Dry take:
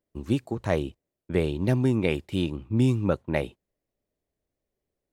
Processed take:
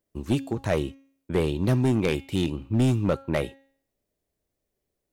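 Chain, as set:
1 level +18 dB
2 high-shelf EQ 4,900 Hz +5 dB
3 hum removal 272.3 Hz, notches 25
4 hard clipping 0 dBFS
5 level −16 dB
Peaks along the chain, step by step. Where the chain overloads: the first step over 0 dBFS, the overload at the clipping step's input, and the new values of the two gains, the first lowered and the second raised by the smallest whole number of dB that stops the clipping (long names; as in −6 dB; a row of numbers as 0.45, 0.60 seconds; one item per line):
+9.5, +9.5, +9.5, 0.0, −16.0 dBFS
step 1, 9.5 dB
step 1 +8 dB, step 5 −6 dB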